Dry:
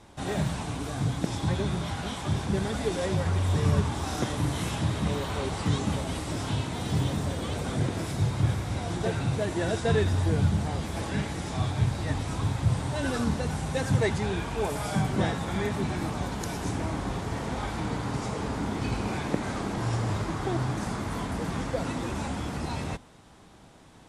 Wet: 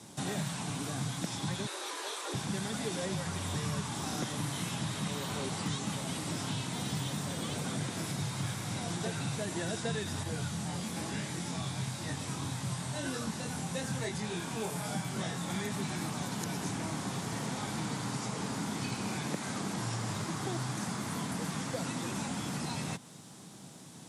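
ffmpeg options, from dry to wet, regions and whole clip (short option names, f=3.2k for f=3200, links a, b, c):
-filter_complex "[0:a]asettb=1/sr,asplit=3[a][b][c];[a]atrim=end=1.664[d];[b]atrim=start=1.66:end=2.34,asetpts=PTS-STARTPTS,afade=t=in:d=0.004:c=qsin,afade=t=out:st=0.676:d=0.004:c=qsin,highpass=250,lowshelf=f=380:g=-6.5,afreqshift=200[e];[c]atrim=start=2.336[f];[d][e]acrossfade=d=0.004:c1=hsin:c2=qsin[g];[g][f]acrossfade=d=0.004:c1=qsin:c2=hsin,asettb=1/sr,asplit=3[h][i][j];[h]atrim=end=10.234[k];[i]atrim=start=10.23:end=15.5,asetpts=PTS-STARTPTS,afade=t=in:d=0.004:c=qsin,afade=t=out:st=5.266:d=0.004:c=qsin,flanger=delay=1.5:depth=4.3:regen=71:speed=1:shape=triangular,asplit=2[l][m];[m]adelay=23,volume=-3dB[n];[l][n]amix=inputs=2:normalize=0,atrim=end_sample=232407[o];[j]atrim=start=15.496[p];[k][o]acrossfade=d=0.004:c1=hsin:c2=qsin[q];[q][p]acrossfade=d=0.004:c1=qsin:c2=hsin,highpass=f=140:w=0.5412,highpass=f=140:w=1.3066,bass=f=250:g=11,treble=f=4k:g=14,acrossover=split=750|3600[r][s][t];[r]acompressor=threshold=-34dB:ratio=4[u];[s]acompressor=threshold=-38dB:ratio=4[v];[t]acompressor=threshold=-43dB:ratio=4[w];[u][v][w]amix=inputs=3:normalize=0,volume=-2dB"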